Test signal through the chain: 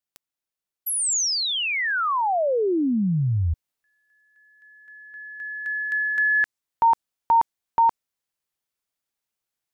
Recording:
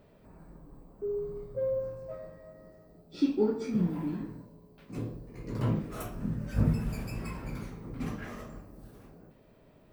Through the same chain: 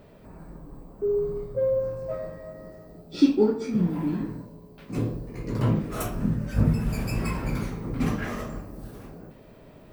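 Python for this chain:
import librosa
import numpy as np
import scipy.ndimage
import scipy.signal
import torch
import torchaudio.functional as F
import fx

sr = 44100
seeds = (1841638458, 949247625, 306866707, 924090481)

y = fx.dynamic_eq(x, sr, hz=6900.0, q=0.85, threshold_db=-50.0, ratio=4.0, max_db=5)
y = fx.rider(y, sr, range_db=3, speed_s=0.5)
y = y * 10.0 ** (7.0 / 20.0)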